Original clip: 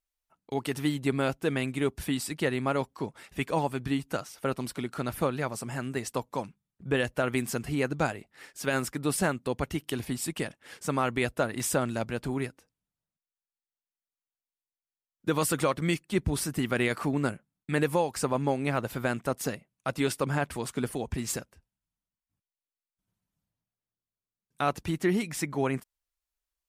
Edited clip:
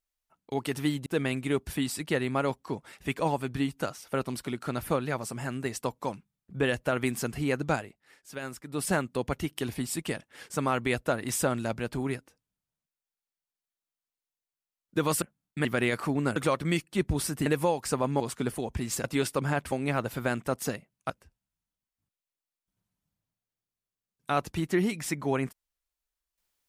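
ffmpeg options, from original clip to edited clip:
ffmpeg -i in.wav -filter_complex "[0:a]asplit=12[link_01][link_02][link_03][link_04][link_05][link_06][link_07][link_08][link_09][link_10][link_11][link_12];[link_01]atrim=end=1.062[link_13];[link_02]atrim=start=1.368:end=8.3,asetpts=PTS-STARTPTS,afade=type=out:start_time=6.662:duration=0.27:silence=0.334965[link_14];[link_03]atrim=start=8.3:end=8.97,asetpts=PTS-STARTPTS,volume=-9.5dB[link_15];[link_04]atrim=start=8.97:end=15.532,asetpts=PTS-STARTPTS,afade=type=in:duration=0.27:silence=0.334965[link_16];[link_05]atrim=start=17.338:end=17.772[link_17];[link_06]atrim=start=16.628:end=17.342[link_18];[link_07]atrim=start=15.528:end=16.632[link_19];[link_08]atrim=start=17.768:end=18.512[link_20];[link_09]atrim=start=20.568:end=21.412[link_21];[link_10]atrim=start=19.888:end=20.572[link_22];[link_11]atrim=start=18.508:end=19.892[link_23];[link_12]atrim=start=21.408[link_24];[link_14][link_15][link_16]concat=n=3:v=0:a=1[link_25];[link_13][link_25]acrossfade=duration=0.004:curve1=hsin:curve2=hsin[link_26];[link_26][link_17]acrossfade=duration=0.004:curve1=hsin:curve2=hsin[link_27];[link_27][link_18]acrossfade=duration=0.004:curve1=hsin:curve2=hsin[link_28];[link_28][link_19]acrossfade=duration=0.004:curve1=hsin:curve2=hsin[link_29];[link_29][link_20]acrossfade=duration=0.004:curve1=hsin:curve2=hsin[link_30];[link_30][link_21]acrossfade=duration=0.004:curve1=hsin:curve2=hsin[link_31];[link_31][link_22]acrossfade=duration=0.004:curve1=hsin:curve2=hsin[link_32];[link_32][link_23]acrossfade=duration=0.004:curve1=hsin:curve2=hsin[link_33];[link_33][link_24]acrossfade=duration=0.004:curve1=hsin:curve2=hsin" out.wav

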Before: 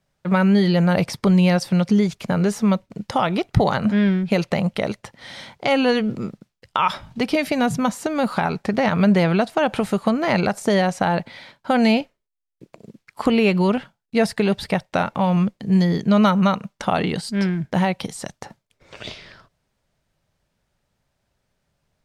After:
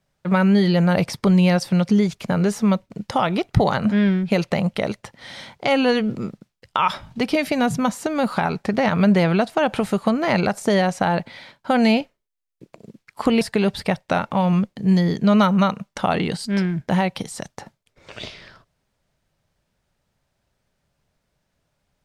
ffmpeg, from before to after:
ffmpeg -i in.wav -filter_complex "[0:a]asplit=2[link_01][link_02];[link_01]atrim=end=13.412[link_03];[link_02]atrim=start=14.248[link_04];[link_03][link_04]acrossfade=duration=0.004:curve1=hsin:curve2=hsin" out.wav

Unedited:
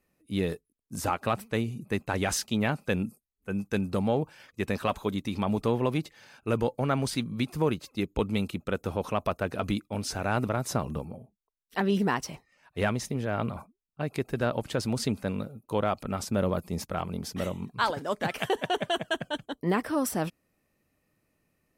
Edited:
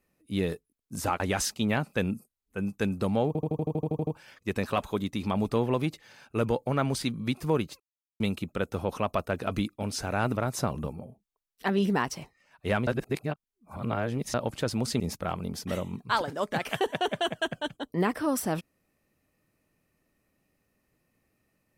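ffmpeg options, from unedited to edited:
ffmpeg -i in.wav -filter_complex "[0:a]asplit=17[link_01][link_02][link_03][link_04][link_05][link_06][link_07][link_08][link_09][link_10][link_11][link_12][link_13][link_14][link_15][link_16][link_17];[link_01]atrim=end=1.202[link_18];[link_02]atrim=start=2.118:end=4.272[link_19];[link_03]atrim=start=4.188:end=4.272[link_20];[link_04]atrim=start=4.188:end=4.272[link_21];[link_05]atrim=start=4.188:end=4.272[link_22];[link_06]atrim=start=4.188:end=4.272[link_23];[link_07]atrim=start=4.188:end=4.272[link_24];[link_08]atrim=start=4.188:end=4.272[link_25];[link_09]atrim=start=4.188:end=4.272[link_26];[link_10]atrim=start=4.188:end=4.272[link_27];[link_11]atrim=start=4.188:end=4.272[link_28];[link_12]atrim=start=4.188:end=7.92,asetpts=PTS-STARTPTS,afade=type=out:start_time=3.728:duration=0.004:curve=hsin[link_29];[link_13]atrim=start=7.92:end=8.32,asetpts=PTS-STARTPTS,volume=0[link_30];[link_14]atrim=start=8.32:end=12.992,asetpts=PTS-STARTPTS,afade=type=in:duration=0.004:curve=hsin[link_31];[link_15]atrim=start=12.988:end=14.462,asetpts=PTS-STARTPTS,areverse[link_32];[link_16]atrim=start=14.458:end=15.122[link_33];[link_17]atrim=start=16.688[link_34];[link_18][link_19]acrossfade=duration=0.004:curve1=hsin:curve2=hsin[link_35];[link_35][link_20]acrossfade=duration=0.004:curve1=hsin:curve2=hsin[link_36];[link_36][link_21]acrossfade=duration=0.004:curve1=hsin:curve2=hsin[link_37];[link_37][link_22]acrossfade=duration=0.004:curve1=hsin:curve2=hsin[link_38];[link_38][link_23]acrossfade=duration=0.004:curve1=hsin:curve2=hsin[link_39];[link_39][link_24]acrossfade=duration=0.004:curve1=hsin:curve2=hsin[link_40];[link_40][link_25]acrossfade=duration=0.004:curve1=hsin:curve2=hsin[link_41];[link_41][link_26]acrossfade=duration=0.004:curve1=hsin:curve2=hsin[link_42];[link_42][link_27]acrossfade=duration=0.004:curve1=hsin:curve2=hsin[link_43];[link_43][link_28]acrossfade=duration=0.004:curve1=hsin:curve2=hsin[link_44];[link_29][link_30][link_31]concat=n=3:v=0:a=1[link_45];[link_44][link_45]acrossfade=duration=0.004:curve1=hsin:curve2=hsin[link_46];[link_46][link_32]acrossfade=duration=0.004:curve1=hsin:curve2=hsin[link_47];[link_47][link_33]acrossfade=duration=0.004:curve1=hsin:curve2=hsin[link_48];[link_48][link_34]acrossfade=duration=0.004:curve1=hsin:curve2=hsin" out.wav

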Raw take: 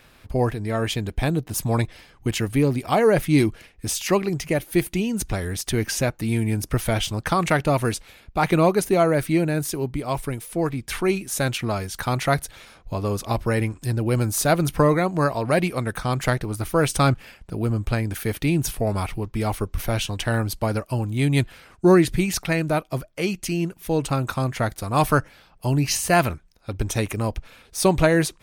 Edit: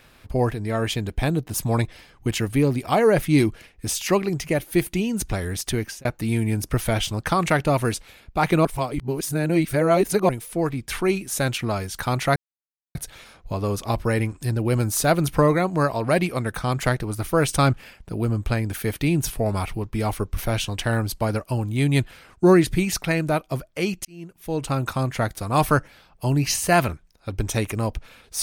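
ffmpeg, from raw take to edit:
ffmpeg -i in.wav -filter_complex "[0:a]asplit=6[link_01][link_02][link_03][link_04][link_05][link_06];[link_01]atrim=end=6.05,asetpts=PTS-STARTPTS,afade=type=out:start_time=5.7:duration=0.35[link_07];[link_02]atrim=start=6.05:end=8.652,asetpts=PTS-STARTPTS,afade=type=in:duration=0.004:curve=hsin[link_08];[link_03]atrim=start=8.648:end=10.292,asetpts=PTS-STARTPTS,areverse[link_09];[link_04]atrim=start=10.288:end=12.36,asetpts=PTS-STARTPTS,afade=type=out:start_time=2.068:duration=0.004:curve=hsin,apad=pad_dur=0.59[link_10];[link_05]atrim=start=12.36:end=23.46,asetpts=PTS-STARTPTS,afade=type=in:duration=0.004:curve=hsin,afade=type=out:start_time=11.096:duration=0.004:curve=hsin[link_11];[link_06]atrim=start=23.46,asetpts=PTS-STARTPTS,afade=type=in:duration=0.77[link_12];[link_07][link_08]concat=n=2:v=0:a=1[link_13];[link_13][link_09]acrossfade=duration=0.004:curve1=hsin:curve2=hsin[link_14];[link_10][link_11][link_12]concat=n=3:v=0:a=1[link_15];[link_14][link_15]acrossfade=duration=0.004:curve1=hsin:curve2=hsin" out.wav

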